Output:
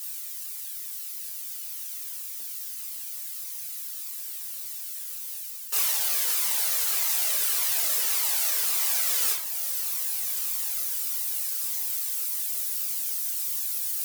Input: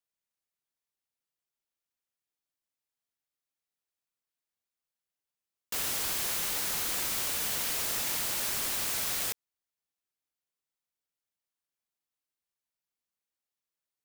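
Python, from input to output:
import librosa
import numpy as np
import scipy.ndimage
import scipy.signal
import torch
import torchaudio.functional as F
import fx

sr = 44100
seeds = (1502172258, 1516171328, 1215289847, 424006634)

y = x + 0.5 * 10.0 ** (-34.5 / 20.0) * np.diff(np.sign(x), prepend=np.sign(x[:1]))
y = scipy.signal.sosfilt(scipy.signal.cheby1(4, 1.0, 430.0, 'highpass', fs=sr, output='sos'), y)
y = fx.peak_eq(y, sr, hz=820.0, db=4.0, octaves=1.5)
y = fx.rider(y, sr, range_db=3, speed_s=0.5)
y = fx.peak_eq(y, sr, hz=16000.0, db=fx.steps((0.0, 5.0), (5.73, 11.5)), octaves=2.3)
y = fx.echo_diffused(y, sr, ms=1471, feedback_pct=64, wet_db=-12)
y = fx.dereverb_blind(y, sr, rt60_s=0.65)
y = fx.room_shoebox(y, sr, seeds[0], volume_m3=260.0, walls='mixed', distance_m=1.7)
y = fx.comb_cascade(y, sr, direction='falling', hz=1.7)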